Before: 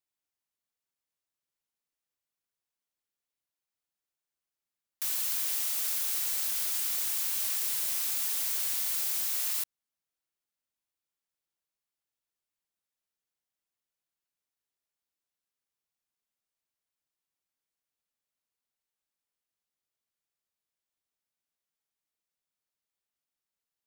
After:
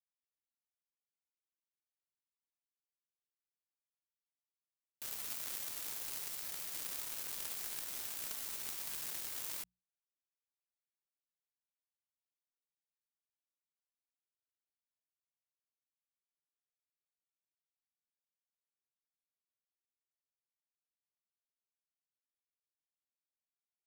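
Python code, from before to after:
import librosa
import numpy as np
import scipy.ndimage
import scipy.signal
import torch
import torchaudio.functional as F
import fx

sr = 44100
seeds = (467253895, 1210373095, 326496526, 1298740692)

y = fx.power_curve(x, sr, exponent=3.0)
y = fx.hum_notches(y, sr, base_hz=60, count=3)
y = y * librosa.db_to_amplitude(2.0)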